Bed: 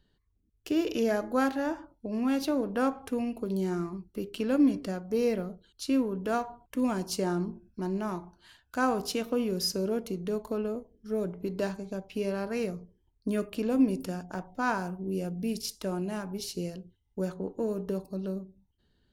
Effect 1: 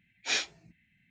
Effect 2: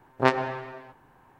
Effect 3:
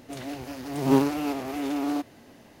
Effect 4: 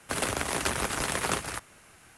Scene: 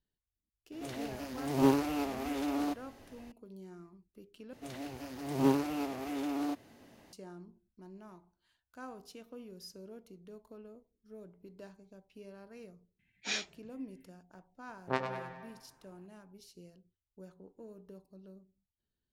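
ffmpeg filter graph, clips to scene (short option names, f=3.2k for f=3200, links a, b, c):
-filter_complex "[3:a]asplit=2[a][b];[0:a]volume=-19.5dB[c];[a]asubboost=boost=7.5:cutoff=71[d];[2:a]aecho=1:1:99|198|297|396|495:0.398|0.183|0.0842|0.0388|0.0178[e];[c]asplit=2[f][g];[f]atrim=end=4.534[h];[b]atrim=end=2.6,asetpts=PTS-STARTPTS,volume=-7dB[i];[g]atrim=start=7.126[j];[d]atrim=end=2.6,asetpts=PTS-STARTPTS,volume=-4.5dB,afade=t=in:d=0.004:c=hsin,afade=t=out:st=2.596:d=0.004:c=hsin,adelay=720[k];[1:a]atrim=end=1.1,asetpts=PTS-STARTPTS,volume=-6dB,afade=t=in:d=0.004:c=hsin,afade=t=out:st=1.096:d=0.004:c=hsin,adelay=12990[l];[e]atrim=end=1.39,asetpts=PTS-STARTPTS,volume=-12dB,afade=t=in:d=0.004:c=hsin,afade=t=out:st=1.386:d=0.004:c=hsin,adelay=14680[m];[h][i]acrossfade=d=0.004:c1=hsin:c2=hsin[n];[n][j]acrossfade=d=0.004:c1=hsin:c2=hsin[o];[o][k][l][m]amix=inputs=4:normalize=0"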